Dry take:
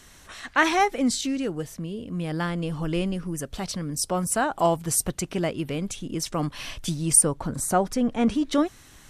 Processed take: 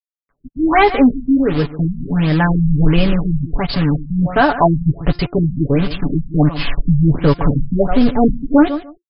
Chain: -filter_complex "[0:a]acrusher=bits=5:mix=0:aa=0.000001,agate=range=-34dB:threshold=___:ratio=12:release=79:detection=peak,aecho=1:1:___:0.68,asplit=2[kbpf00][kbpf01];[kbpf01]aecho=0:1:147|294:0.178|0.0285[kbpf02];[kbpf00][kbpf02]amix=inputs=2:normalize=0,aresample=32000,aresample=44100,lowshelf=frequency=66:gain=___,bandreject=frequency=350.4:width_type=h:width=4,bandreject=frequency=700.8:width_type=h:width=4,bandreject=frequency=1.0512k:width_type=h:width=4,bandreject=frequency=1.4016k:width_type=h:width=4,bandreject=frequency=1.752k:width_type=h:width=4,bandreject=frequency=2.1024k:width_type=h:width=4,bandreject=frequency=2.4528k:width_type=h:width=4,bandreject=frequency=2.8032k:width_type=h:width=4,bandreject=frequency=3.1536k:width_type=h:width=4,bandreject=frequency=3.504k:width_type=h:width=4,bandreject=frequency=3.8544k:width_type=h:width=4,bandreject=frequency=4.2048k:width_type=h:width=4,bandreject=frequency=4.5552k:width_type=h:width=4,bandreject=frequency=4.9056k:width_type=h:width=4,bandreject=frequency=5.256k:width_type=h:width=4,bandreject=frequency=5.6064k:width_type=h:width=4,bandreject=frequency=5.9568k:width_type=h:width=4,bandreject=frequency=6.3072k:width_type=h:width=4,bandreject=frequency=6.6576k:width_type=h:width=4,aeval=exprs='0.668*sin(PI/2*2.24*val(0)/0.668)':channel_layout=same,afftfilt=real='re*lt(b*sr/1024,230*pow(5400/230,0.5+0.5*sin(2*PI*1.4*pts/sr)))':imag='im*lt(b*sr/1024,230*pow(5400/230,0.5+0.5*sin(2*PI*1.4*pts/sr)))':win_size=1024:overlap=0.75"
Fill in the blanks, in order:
-39dB, 7, 12